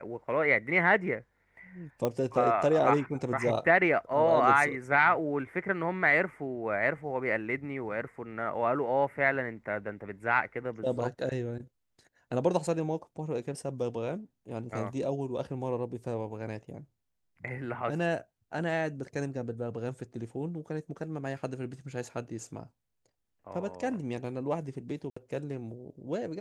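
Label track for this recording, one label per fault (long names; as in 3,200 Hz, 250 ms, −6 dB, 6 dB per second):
2.050000	2.050000	click −16 dBFS
25.100000	25.160000	drop-out 65 ms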